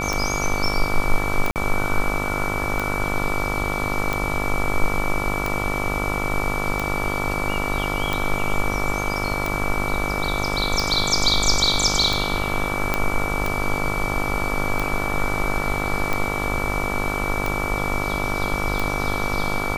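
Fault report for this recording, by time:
buzz 50 Hz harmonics 28 -27 dBFS
tick 45 rpm
whine 2.3 kHz -27 dBFS
1.51–1.56 s: dropout 48 ms
12.94 s: pop -5 dBFS

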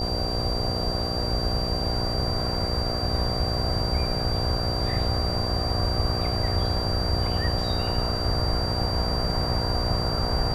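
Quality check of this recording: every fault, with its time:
buzz 60 Hz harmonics 13 -31 dBFS
whine 4.7 kHz -30 dBFS

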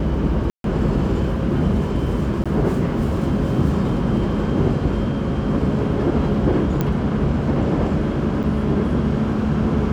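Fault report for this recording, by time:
0.50–0.64 s: dropout 142 ms
2.44–2.46 s: dropout 16 ms
6.81 s: pop -9 dBFS
8.43–8.44 s: dropout 6.5 ms

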